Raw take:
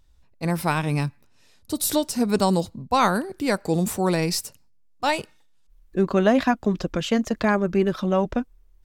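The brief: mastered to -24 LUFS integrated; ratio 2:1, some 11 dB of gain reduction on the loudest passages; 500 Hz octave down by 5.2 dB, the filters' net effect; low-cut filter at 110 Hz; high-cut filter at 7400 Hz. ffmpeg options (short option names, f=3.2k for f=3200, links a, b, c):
-af "highpass=110,lowpass=7.4k,equalizer=f=500:t=o:g=-7,acompressor=threshold=-37dB:ratio=2,volume=11dB"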